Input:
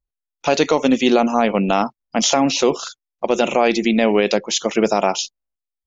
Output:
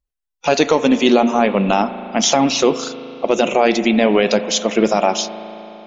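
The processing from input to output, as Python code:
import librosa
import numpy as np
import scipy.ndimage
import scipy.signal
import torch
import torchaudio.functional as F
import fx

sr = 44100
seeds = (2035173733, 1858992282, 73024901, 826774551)

y = fx.spec_quant(x, sr, step_db=15)
y = fx.rev_spring(y, sr, rt60_s=3.6, pass_ms=(37,), chirp_ms=60, drr_db=11.5)
y = y * librosa.db_to_amplitude(2.0)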